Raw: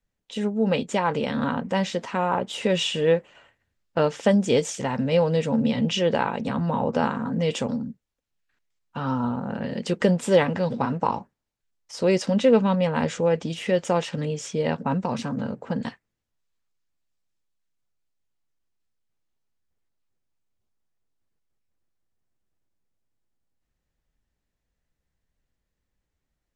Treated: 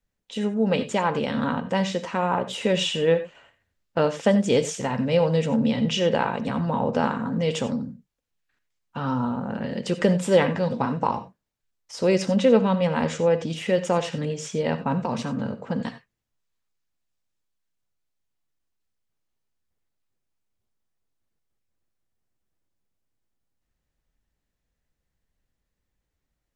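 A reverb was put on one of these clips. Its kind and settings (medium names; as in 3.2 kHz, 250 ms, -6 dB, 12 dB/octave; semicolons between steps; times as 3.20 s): gated-style reverb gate 110 ms rising, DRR 11.5 dB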